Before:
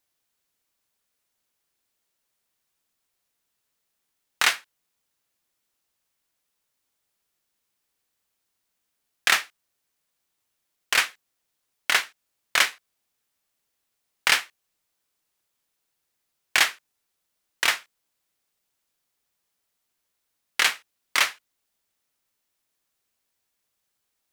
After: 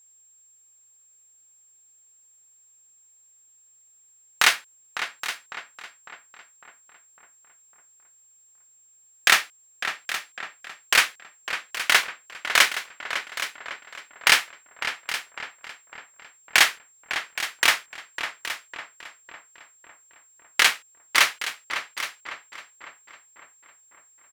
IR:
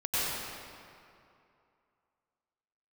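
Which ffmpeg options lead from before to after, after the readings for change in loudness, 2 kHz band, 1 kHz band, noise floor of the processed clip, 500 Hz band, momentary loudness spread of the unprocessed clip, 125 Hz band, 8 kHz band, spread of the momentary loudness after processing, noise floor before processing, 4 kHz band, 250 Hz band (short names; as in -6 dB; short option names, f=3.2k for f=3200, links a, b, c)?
0.0 dB, +3.5 dB, +4.0 dB, -58 dBFS, +4.0 dB, 10 LU, n/a, +3.5 dB, 21 LU, -79 dBFS, +3.5 dB, +4.0 dB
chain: -filter_complex "[0:a]asplit=2[a][b];[b]aecho=0:1:820:0.237[c];[a][c]amix=inputs=2:normalize=0,aeval=exprs='val(0)+0.00141*sin(2*PI*7500*n/s)':c=same,asplit=2[d][e];[e]adelay=553,lowpass=f=2.6k:p=1,volume=-9dB,asplit=2[f][g];[g]adelay=553,lowpass=f=2.6k:p=1,volume=0.54,asplit=2[h][i];[i]adelay=553,lowpass=f=2.6k:p=1,volume=0.54,asplit=2[j][k];[k]adelay=553,lowpass=f=2.6k:p=1,volume=0.54,asplit=2[l][m];[m]adelay=553,lowpass=f=2.6k:p=1,volume=0.54,asplit=2[n][o];[o]adelay=553,lowpass=f=2.6k:p=1,volume=0.54[p];[f][h][j][l][n][p]amix=inputs=6:normalize=0[q];[d][q]amix=inputs=2:normalize=0,volume=3dB"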